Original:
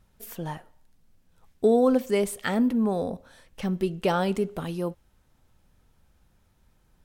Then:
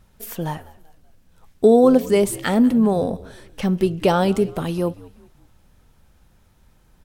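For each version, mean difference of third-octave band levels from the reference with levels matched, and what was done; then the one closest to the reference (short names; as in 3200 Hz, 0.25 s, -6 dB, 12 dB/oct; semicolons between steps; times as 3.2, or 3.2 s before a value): 2.0 dB: dynamic EQ 1800 Hz, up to -4 dB, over -40 dBFS, Q 1; on a send: frequency-shifting echo 0.192 s, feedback 43%, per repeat -72 Hz, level -20.5 dB; on the sum: gain +7.5 dB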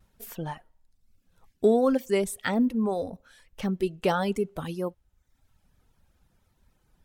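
3.0 dB: reverb removal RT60 0.92 s; vibrato 1.7 Hz 45 cents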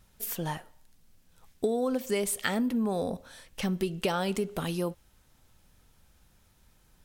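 5.0 dB: high shelf 2100 Hz +8 dB; compressor 6:1, threshold -25 dBFS, peak gain reduction 9.5 dB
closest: first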